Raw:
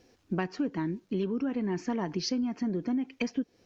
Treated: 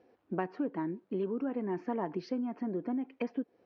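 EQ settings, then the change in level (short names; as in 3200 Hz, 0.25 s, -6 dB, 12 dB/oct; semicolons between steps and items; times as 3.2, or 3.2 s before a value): band-pass 660 Hz, Q 0.75; air absorption 150 m; +1.5 dB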